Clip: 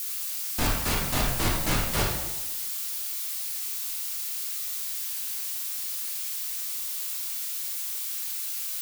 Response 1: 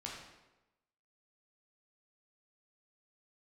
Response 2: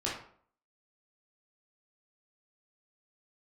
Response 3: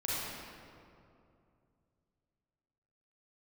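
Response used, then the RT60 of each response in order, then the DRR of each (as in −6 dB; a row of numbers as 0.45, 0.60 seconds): 1; 1.0, 0.55, 2.6 seconds; −3.5, −6.5, −8.0 decibels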